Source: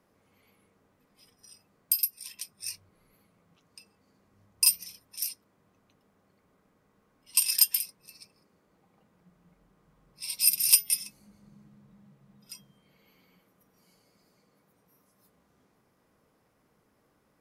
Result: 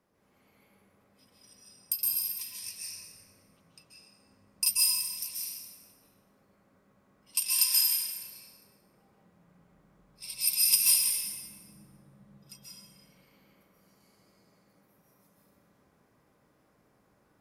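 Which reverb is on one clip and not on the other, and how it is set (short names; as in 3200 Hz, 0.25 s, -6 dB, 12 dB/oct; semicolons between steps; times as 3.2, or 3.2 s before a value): plate-style reverb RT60 1.9 s, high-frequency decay 0.6×, pre-delay 0.12 s, DRR -6 dB; gain -5.5 dB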